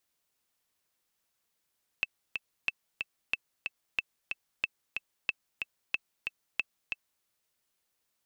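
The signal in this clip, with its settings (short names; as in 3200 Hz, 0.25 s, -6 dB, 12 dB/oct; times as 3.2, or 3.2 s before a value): metronome 184 bpm, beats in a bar 2, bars 8, 2640 Hz, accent 5 dB -14.5 dBFS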